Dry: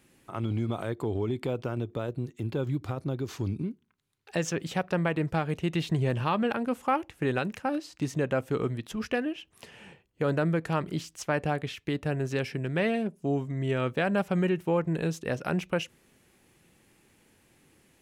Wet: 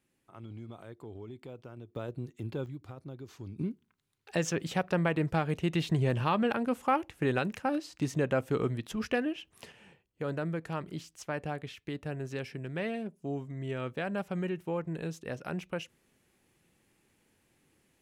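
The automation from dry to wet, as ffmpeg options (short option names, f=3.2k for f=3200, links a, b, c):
-af "asetnsamples=n=441:p=0,asendcmd='1.96 volume volume -5.5dB;2.66 volume volume -12.5dB;3.58 volume volume -1dB;9.72 volume volume -7.5dB',volume=-15dB"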